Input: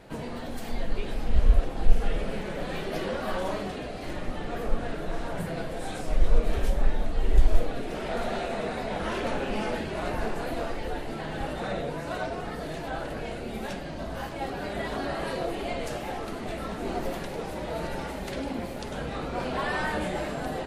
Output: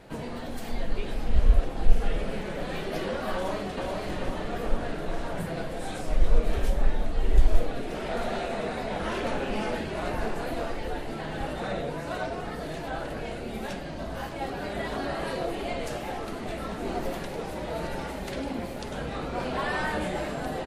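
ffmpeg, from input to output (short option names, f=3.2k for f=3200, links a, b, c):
-filter_complex "[0:a]asplit=2[a][b];[b]afade=t=in:st=3.34:d=0.01,afade=t=out:st=3.87:d=0.01,aecho=0:1:430|860|1290|1720|2150|2580|3010|3440|3870|4300:0.668344|0.434424|0.282375|0.183544|0.119304|0.0775473|0.0504058|0.0327637|0.0212964|0.0138427[c];[a][c]amix=inputs=2:normalize=0"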